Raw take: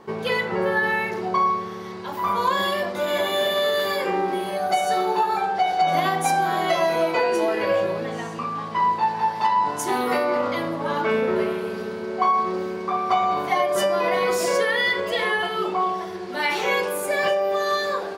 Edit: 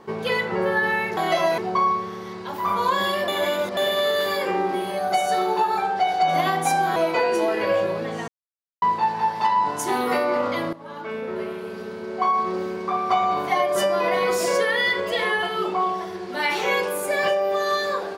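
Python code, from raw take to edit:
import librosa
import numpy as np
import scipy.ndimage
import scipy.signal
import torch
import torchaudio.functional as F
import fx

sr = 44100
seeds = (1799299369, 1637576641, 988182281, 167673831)

y = fx.edit(x, sr, fx.reverse_span(start_s=2.87, length_s=0.49),
    fx.move(start_s=6.55, length_s=0.41, to_s=1.17),
    fx.silence(start_s=8.28, length_s=0.54),
    fx.fade_in_from(start_s=10.73, length_s=1.88, floor_db=-15.5), tone=tone)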